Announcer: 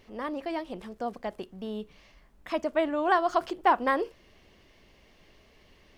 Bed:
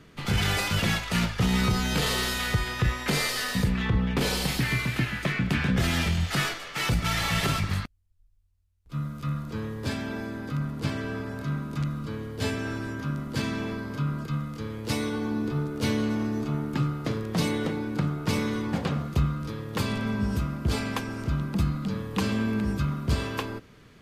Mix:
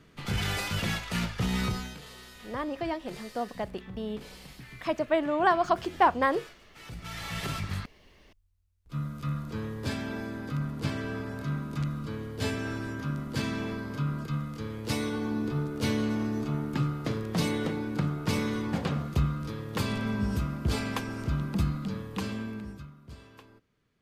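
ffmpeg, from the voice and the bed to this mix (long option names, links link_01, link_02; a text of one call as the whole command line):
ffmpeg -i stem1.wav -i stem2.wav -filter_complex "[0:a]adelay=2350,volume=0.5dB[link_01];[1:a]volume=14dB,afade=type=out:start_time=1.65:duration=0.33:silence=0.158489,afade=type=in:start_time=6.83:duration=1.44:silence=0.112202,afade=type=out:start_time=21.62:duration=1.3:silence=0.105925[link_02];[link_01][link_02]amix=inputs=2:normalize=0" out.wav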